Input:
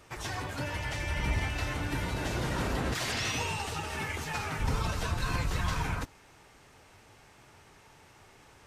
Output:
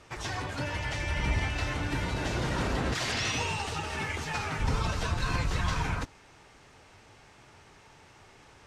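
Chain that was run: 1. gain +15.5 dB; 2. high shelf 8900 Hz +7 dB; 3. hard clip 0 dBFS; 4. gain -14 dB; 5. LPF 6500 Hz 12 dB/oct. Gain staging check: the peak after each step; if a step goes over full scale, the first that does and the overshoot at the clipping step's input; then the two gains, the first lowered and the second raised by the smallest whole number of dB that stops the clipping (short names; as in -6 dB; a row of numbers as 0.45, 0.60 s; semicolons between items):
-2.5, -2.0, -2.0, -16.0, -16.5 dBFS; no overload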